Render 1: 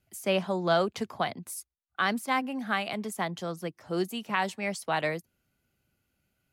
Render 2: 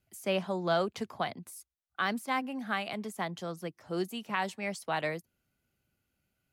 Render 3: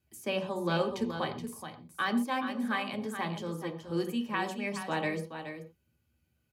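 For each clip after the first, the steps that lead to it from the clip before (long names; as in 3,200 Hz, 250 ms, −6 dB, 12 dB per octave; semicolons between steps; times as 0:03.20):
de-essing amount 75%; level −3.5 dB
notch comb filter 690 Hz; single-tap delay 424 ms −9 dB; on a send at −6 dB: convolution reverb, pre-delay 3 ms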